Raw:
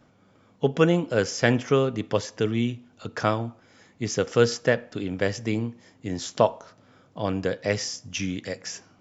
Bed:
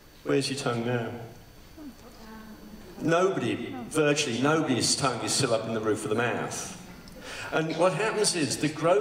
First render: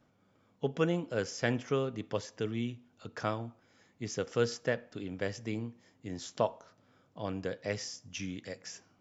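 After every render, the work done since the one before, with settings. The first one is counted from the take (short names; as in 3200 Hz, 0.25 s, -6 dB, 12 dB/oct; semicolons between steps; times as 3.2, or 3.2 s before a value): gain -10 dB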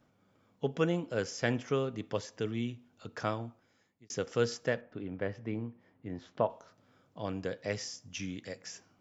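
3.44–4.1 fade out; 4.81–6.5 LPF 2000 Hz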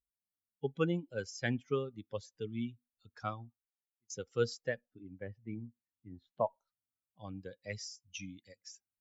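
per-bin expansion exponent 2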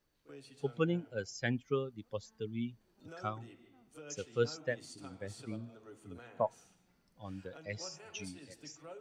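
add bed -27 dB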